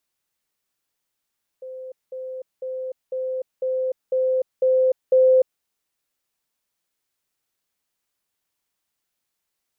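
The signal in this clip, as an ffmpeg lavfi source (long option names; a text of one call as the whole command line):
ffmpeg -f lavfi -i "aevalsrc='pow(10,(-32.5+3*floor(t/0.5))/20)*sin(2*PI*517*t)*clip(min(mod(t,0.5),0.3-mod(t,0.5))/0.005,0,1)':duration=4:sample_rate=44100" out.wav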